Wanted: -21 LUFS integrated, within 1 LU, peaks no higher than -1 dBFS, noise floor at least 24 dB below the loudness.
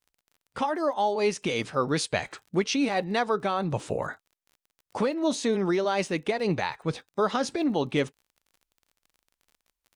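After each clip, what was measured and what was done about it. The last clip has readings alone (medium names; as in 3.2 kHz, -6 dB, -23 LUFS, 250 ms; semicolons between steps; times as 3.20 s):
tick rate 36 per s; loudness -27.5 LUFS; peak level -11.0 dBFS; loudness target -21.0 LUFS
-> de-click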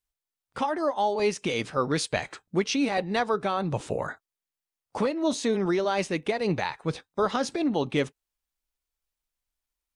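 tick rate 0 per s; loudness -27.5 LUFS; peak level -11.0 dBFS; loudness target -21.0 LUFS
-> trim +6.5 dB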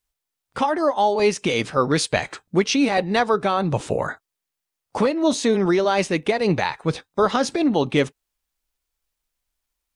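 loudness -21.0 LUFS; peak level -4.5 dBFS; noise floor -84 dBFS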